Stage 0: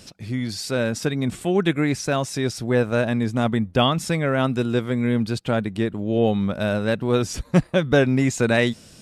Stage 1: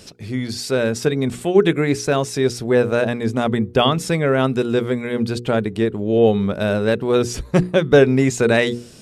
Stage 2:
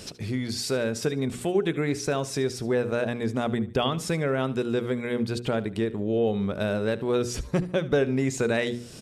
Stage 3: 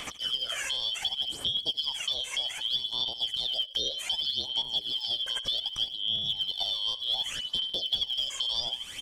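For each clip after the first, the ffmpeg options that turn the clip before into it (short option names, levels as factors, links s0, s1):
-af "equalizer=f=420:w=4:g=8,bandreject=f=60:t=h:w=6,bandreject=f=120:t=h:w=6,bandreject=f=180:t=h:w=6,bandreject=f=240:t=h:w=6,bandreject=f=300:t=h:w=6,bandreject=f=360:t=h:w=6,bandreject=f=420:t=h:w=6,bandreject=f=480:t=h:w=6,volume=1.33"
-af "acompressor=threshold=0.0251:ratio=2,aecho=1:1:74|148|222:0.133|0.0427|0.0137,volume=1.19"
-filter_complex "[0:a]afftfilt=real='real(if(lt(b,272),68*(eq(floor(b/68),0)*2+eq(floor(b/68),1)*3+eq(floor(b/68),2)*0+eq(floor(b/68),3)*1)+mod(b,68),b),0)':imag='imag(if(lt(b,272),68*(eq(floor(b/68),0)*2+eq(floor(b/68),1)*3+eq(floor(b/68),2)*0+eq(floor(b/68),3)*1)+mod(b,68),b),0)':win_size=2048:overlap=0.75,aphaser=in_gain=1:out_gain=1:delay=1.9:decay=0.62:speed=0.65:type=sinusoidal,acrossover=split=590|2400|6500[s0][s1][s2][s3];[s0]acompressor=threshold=0.00501:ratio=4[s4];[s1]acompressor=threshold=0.00794:ratio=4[s5];[s2]acompressor=threshold=0.02:ratio=4[s6];[s3]acompressor=threshold=0.00355:ratio=4[s7];[s4][s5][s6][s7]amix=inputs=4:normalize=0,volume=1.19"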